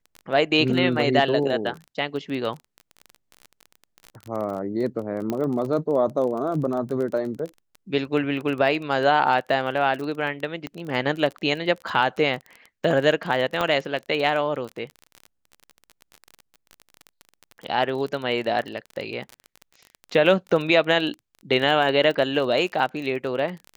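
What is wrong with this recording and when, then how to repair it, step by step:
crackle 23/s -29 dBFS
5.3 pop -14 dBFS
10.67 pop -18 dBFS
13.61 pop -11 dBFS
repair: de-click

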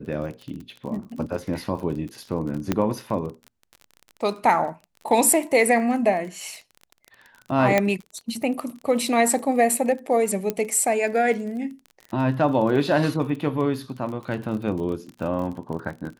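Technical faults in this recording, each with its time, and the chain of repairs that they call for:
crackle 31/s -32 dBFS
2.72 pop -8 dBFS
7.78 pop -6 dBFS
10.5 pop -11 dBFS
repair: de-click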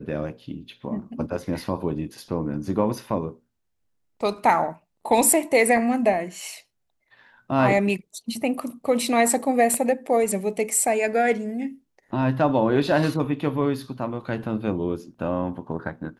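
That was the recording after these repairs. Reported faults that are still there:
7.78 pop
10.5 pop

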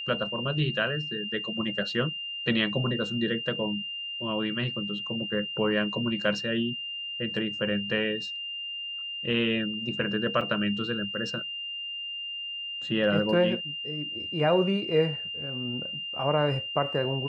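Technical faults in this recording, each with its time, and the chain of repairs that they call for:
tone 2800 Hz -33 dBFS
10.41 gap 4.8 ms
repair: notch 2800 Hz, Q 30; interpolate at 10.41, 4.8 ms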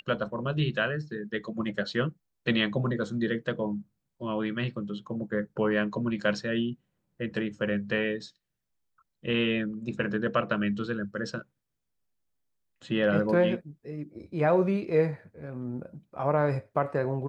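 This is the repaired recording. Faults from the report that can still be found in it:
none

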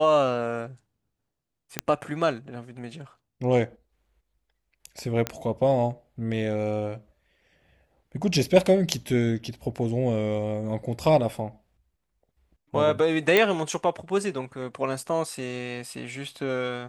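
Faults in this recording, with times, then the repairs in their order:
1.79 pop -7 dBFS
5.27 pop -11 dBFS
13.37 pop -6 dBFS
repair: de-click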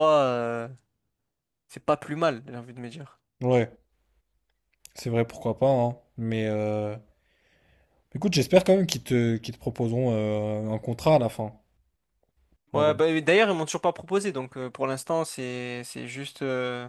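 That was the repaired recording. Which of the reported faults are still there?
none

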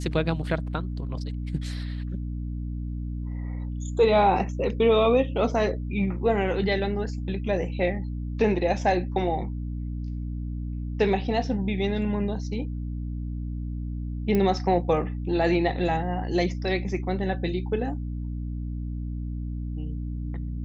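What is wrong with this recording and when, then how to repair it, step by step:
hum 60 Hz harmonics 5 -31 dBFS
14.35 pop -14 dBFS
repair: de-click; de-hum 60 Hz, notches 5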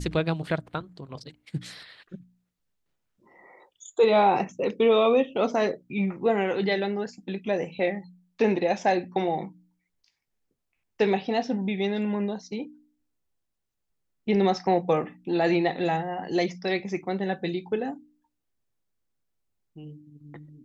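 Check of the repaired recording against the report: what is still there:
none

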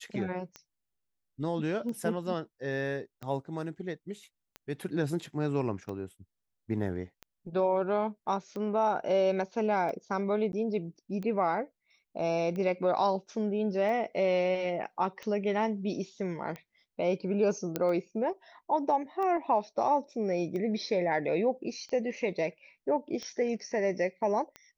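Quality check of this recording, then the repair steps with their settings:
tick 45 rpm -27 dBFS
10.52–10.53 gap 11 ms
17.76 pop -15 dBFS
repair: de-click; interpolate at 10.52, 11 ms

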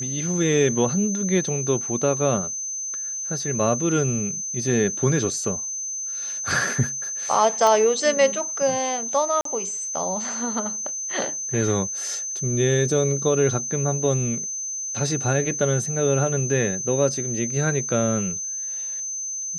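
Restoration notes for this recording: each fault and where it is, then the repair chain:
tone 6200 Hz -27 dBFS
7.67 pop -9 dBFS
9.41–9.45 gap 43 ms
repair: de-click; notch 6200 Hz, Q 30; interpolate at 9.41, 43 ms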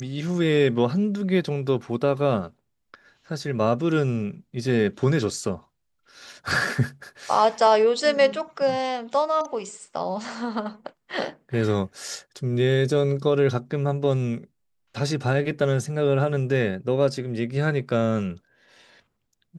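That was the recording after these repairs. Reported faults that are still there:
none

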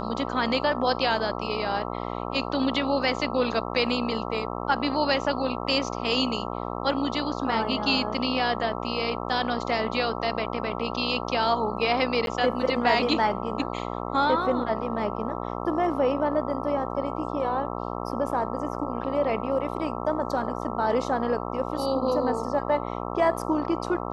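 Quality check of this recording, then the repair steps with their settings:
buzz 60 Hz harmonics 22 -32 dBFS
12.26–12.27 gap 12 ms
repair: de-hum 60 Hz, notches 22; interpolate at 12.26, 12 ms

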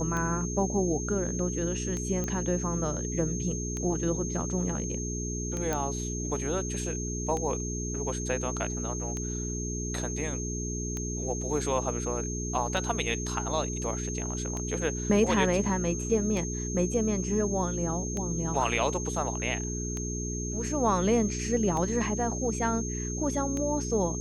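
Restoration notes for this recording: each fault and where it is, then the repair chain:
hum 60 Hz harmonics 7 -34 dBFS
tick 33 1/3 rpm -20 dBFS
tone 6400 Hz -36 dBFS
2.24 pop -19 dBFS
5.73 pop -15 dBFS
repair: de-click; notch 6400 Hz, Q 30; de-hum 60 Hz, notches 7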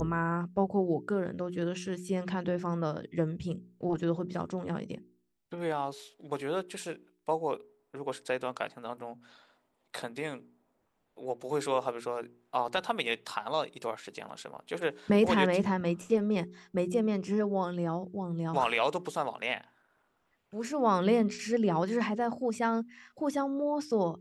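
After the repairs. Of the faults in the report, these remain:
none

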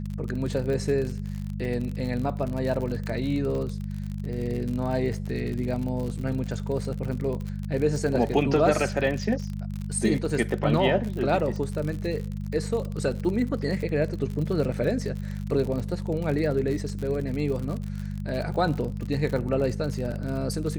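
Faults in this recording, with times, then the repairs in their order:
crackle 56/s -31 dBFS
hum 50 Hz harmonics 4 -32 dBFS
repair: de-click; de-hum 50 Hz, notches 4

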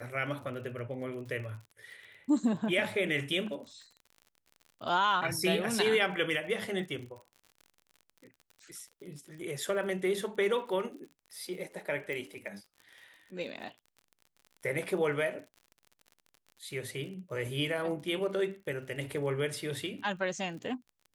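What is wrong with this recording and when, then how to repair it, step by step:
crackle 47/s -43 dBFS
12.13 pop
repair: de-click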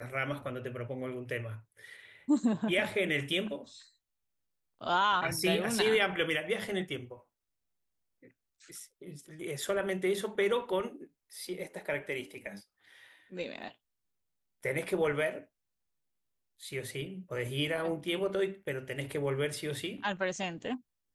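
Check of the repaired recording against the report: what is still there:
none

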